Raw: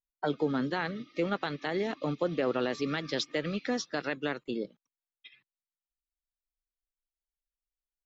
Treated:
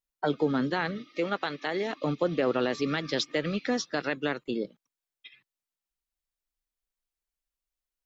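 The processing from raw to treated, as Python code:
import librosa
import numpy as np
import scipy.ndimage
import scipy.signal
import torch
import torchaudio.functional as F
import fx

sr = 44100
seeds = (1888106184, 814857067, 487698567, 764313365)

y = fx.highpass(x, sr, hz=330.0, slope=6, at=(0.98, 2.04))
y = y * 10.0 ** (3.0 / 20.0)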